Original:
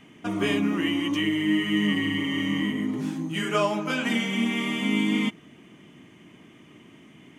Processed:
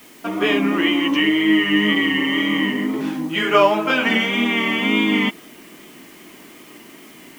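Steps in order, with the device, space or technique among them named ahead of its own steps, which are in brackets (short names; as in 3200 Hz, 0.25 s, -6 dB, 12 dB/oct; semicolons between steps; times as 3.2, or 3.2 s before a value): dictaphone (BPF 310–3600 Hz; AGC gain up to 4 dB; wow and flutter; white noise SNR 29 dB); gain +6.5 dB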